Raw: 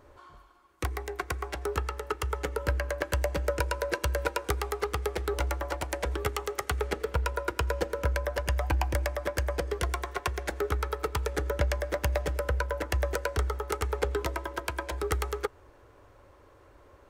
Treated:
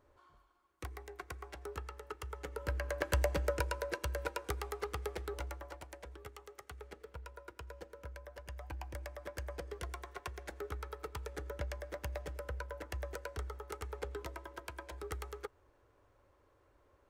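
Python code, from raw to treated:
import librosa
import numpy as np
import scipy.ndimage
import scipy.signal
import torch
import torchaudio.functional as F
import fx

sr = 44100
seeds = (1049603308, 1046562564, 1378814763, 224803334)

y = fx.gain(x, sr, db=fx.line((2.37, -13.0), (3.18, -2.5), (3.98, -9.0), (5.13, -9.0), (6.13, -20.0), (8.28, -20.0), (9.44, -13.0)))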